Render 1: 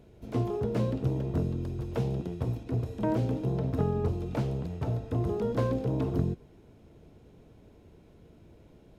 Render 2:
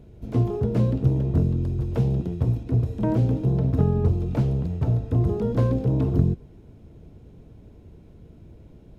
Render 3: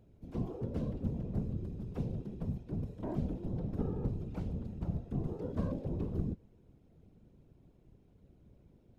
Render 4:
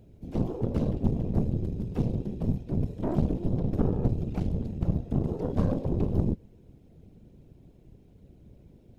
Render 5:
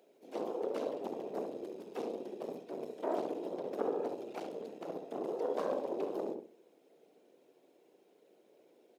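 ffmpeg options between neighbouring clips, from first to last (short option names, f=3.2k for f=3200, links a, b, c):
-af "lowshelf=f=270:g=11"
-af "afftfilt=real='hypot(re,im)*cos(2*PI*random(0))':imag='hypot(re,im)*sin(2*PI*random(1))':win_size=512:overlap=0.75,volume=-8.5dB"
-af "equalizer=f=1.2k:t=o:w=0.99:g=-6.5,aeval=exprs='0.0944*(cos(1*acos(clip(val(0)/0.0944,-1,1)))-cos(1*PI/2))+0.0119*(cos(6*acos(clip(val(0)/0.0944,-1,1)))-cos(6*PI/2))':c=same,volume=8.5dB"
-filter_complex "[0:a]highpass=f=410:w=0.5412,highpass=f=410:w=1.3066,asplit=2[a][b];[b]adelay=68,lowpass=f=990:p=1,volume=-3dB,asplit=2[c][d];[d]adelay=68,lowpass=f=990:p=1,volume=0.32,asplit=2[e][f];[f]adelay=68,lowpass=f=990:p=1,volume=0.32,asplit=2[g][h];[h]adelay=68,lowpass=f=990:p=1,volume=0.32[i];[a][c][e][g][i]amix=inputs=5:normalize=0"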